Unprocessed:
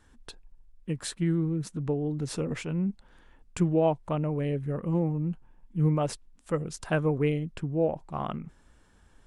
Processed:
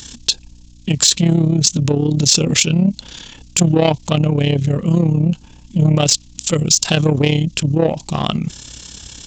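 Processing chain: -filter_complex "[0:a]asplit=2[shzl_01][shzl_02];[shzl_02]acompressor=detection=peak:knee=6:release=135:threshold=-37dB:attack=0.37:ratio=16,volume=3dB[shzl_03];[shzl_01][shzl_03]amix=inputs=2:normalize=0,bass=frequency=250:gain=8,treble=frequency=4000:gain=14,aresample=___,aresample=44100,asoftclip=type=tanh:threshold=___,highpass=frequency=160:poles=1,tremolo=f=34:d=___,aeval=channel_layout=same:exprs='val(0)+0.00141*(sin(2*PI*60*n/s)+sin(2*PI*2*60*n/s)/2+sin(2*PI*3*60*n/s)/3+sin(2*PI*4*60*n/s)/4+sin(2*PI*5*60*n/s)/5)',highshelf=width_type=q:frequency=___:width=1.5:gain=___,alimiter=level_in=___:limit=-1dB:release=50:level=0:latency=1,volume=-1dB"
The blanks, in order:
16000, -16dB, 0.71, 2200, 10.5, 14.5dB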